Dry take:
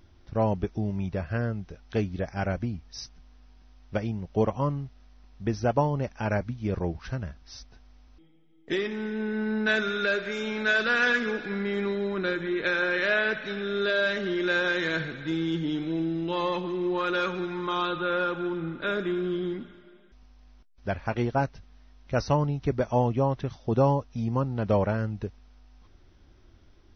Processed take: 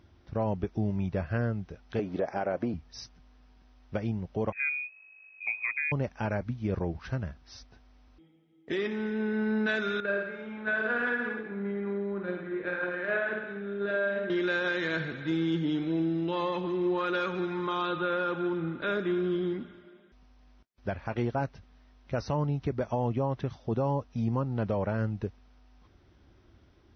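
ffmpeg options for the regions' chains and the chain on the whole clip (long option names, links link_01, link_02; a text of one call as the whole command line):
ffmpeg -i in.wav -filter_complex "[0:a]asettb=1/sr,asplit=3[link_01][link_02][link_03];[link_01]atrim=end=1.994[link_04];[link_02]atrim=start=1.99:end=2.74,asetpts=PTS-STARTPTS,afade=type=in:duration=0.004:curve=qsin,afade=type=out:start_time=0.746:duration=0.004:curve=qsin,equalizer=frequency=500:width=0.43:gain=13.5,acompressor=threshold=-20dB:ratio=2.5:attack=3.2:release=140:knee=1:detection=peak,highpass=frequency=380:poles=1[link_05];[link_03]atrim=start=2.736[link_06];[link_04][link_05]acrossfade=duration=0.004:curve1=hsin:curve2=qsin[link_07];[link_07][link_06]acrossfade=duration=0.004:curve1=qsin:curve2=hsin,asettb=1/sr,asplit=3[link_08][link_09][link_10];[link_08]atrim=end=4.524[link_11];[link_09]atrim=start=4.52:end=5.92,asetpts=PTS-STARTPTS,afade=type=in:duration=0.004:curve=qsin,afade=type=out:start_time=1.396:duration=0.004:curve=qsin,equalizer=frequency=920:width=0.6:gain=-9,lowpass=frequency=2200:width_type=q:width=0.5098,lowpass=frequency=2200:width_type=q:width=0.6013,lowpass=frequency=2200:width_type=q:width=0.9,lowpass=frequency=2200:width_type=q:width=2.563,afreqshift=-2600[link_12];[link_10]atrim=start=5.916[link_13];[link_11][link_12]acrossfade=duration=0.004:curve1=hsin:curve2=qsin[link_14];[link_14][link_13]acrossfade=duration=0.004:curve1=qsin:curve2=hsin,asettb=1/sr,asplit=3[link_15][link_16][link_17];[link_15]atrim=end=10.004[link_18];[link_16]atrim=start=10:end=14.3,asetpts=PTS-STARTPTS,afade=type=in:duration=0.004:curve=qsin,afade=type=out:start_time=4.296:duration=0.004:curve=qsin,lowpass=1800,agate=range=-9dB:threshold=-27dB:ratio=16:release=100:detection=peak,aecho=1:1:50|105|165.5|232|305.3:0.631|0.398|0.251|0.158|0.1,atrim=end_sample=189630[link_19];[link_17]atrim=start=14.296[link_20];[link_18][link_19]acrossfade=duration=0.004:curve1=hsin:curve2=qsin[link_21];[link_21][link_20]acrossfade=duration=0.004:curve1=qsin:curve2=hsin,highpass=59,highshelf=frequency=5400:gain=-9.5,alimiter=limit=-20.5dB:level=0:latency=1:release=119" out.wav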